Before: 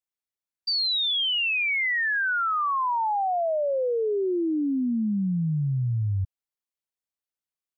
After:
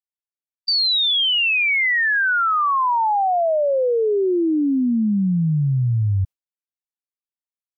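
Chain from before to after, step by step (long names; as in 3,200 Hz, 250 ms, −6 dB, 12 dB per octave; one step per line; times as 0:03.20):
noise gate with hold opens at −22 dBFS
level +6.5 dB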